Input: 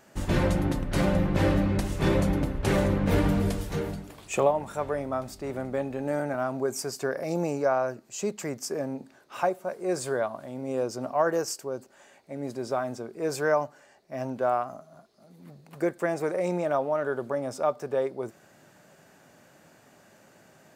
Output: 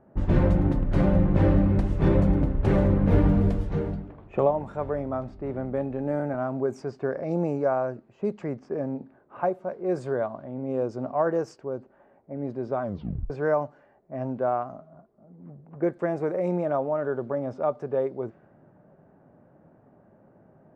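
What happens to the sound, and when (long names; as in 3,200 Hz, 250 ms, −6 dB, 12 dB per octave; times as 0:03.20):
0:12.82: tape stop 0.48 s
whole clip: low-pass filter 1,400 Hz 6 dB per octave; low-pass that shuts in the quiet parts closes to 1,000 Hz, open at −24.5 dBFS; spectral tilt −1.5 dB per octave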